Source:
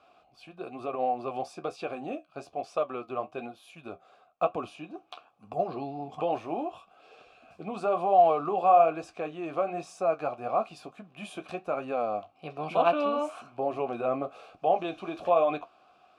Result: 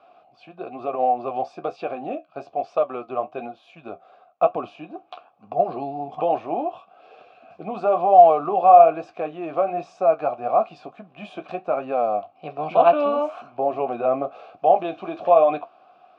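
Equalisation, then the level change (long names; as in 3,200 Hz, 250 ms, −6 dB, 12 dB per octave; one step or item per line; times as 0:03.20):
high-pass filter 120 Hz
high-frequency loss of the air 170 metres
parametric band 690 Hz +6 dB 0.74 octaves
+4.0 dB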